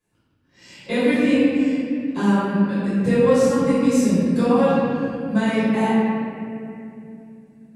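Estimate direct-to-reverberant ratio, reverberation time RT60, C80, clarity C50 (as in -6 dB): -16.0 dB, 2.6 s, -2.0 dB, -4.5 dB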